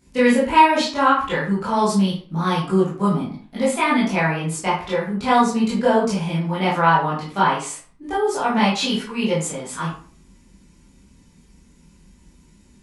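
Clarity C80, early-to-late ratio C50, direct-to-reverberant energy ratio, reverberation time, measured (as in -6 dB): 9.5 dB, 4.0 dB, -10.0 dB, 0.45 s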